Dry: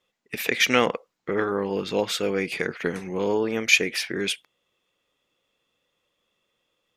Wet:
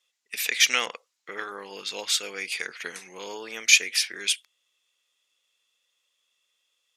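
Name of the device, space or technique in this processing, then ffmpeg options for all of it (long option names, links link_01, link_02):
piezo pickup straight into a mixer: -af "lowpass=8800,aderivative,volume=9dB"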